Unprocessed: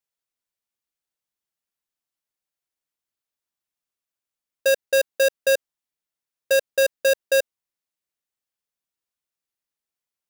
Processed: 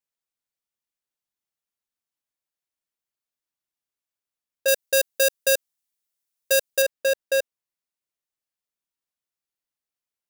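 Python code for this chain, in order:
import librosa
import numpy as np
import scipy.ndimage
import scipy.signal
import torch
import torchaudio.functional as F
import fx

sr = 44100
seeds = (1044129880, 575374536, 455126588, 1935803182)

y = fx.high_shelf(x, sr, hz=4000.0, db=11.0, at=(4.68, 6.82))
y = y * librosa.db_to_amplitude(-3.0)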